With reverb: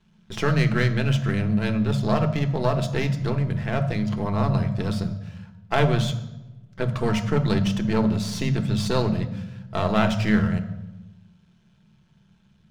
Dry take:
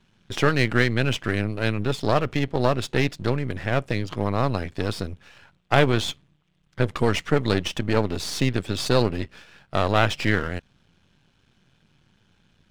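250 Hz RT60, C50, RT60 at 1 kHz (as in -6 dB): 1.5 s, 10.5 dB, 0.90 s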